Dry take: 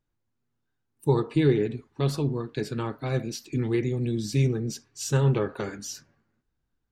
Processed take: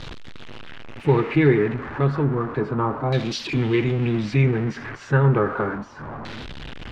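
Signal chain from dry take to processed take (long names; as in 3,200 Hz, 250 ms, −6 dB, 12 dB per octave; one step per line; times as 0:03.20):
converter with a step at zero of −32 dBFS
auto-filter low-pass saw down 0.32 Hz 970–3,900 Hz
level +3.5 dB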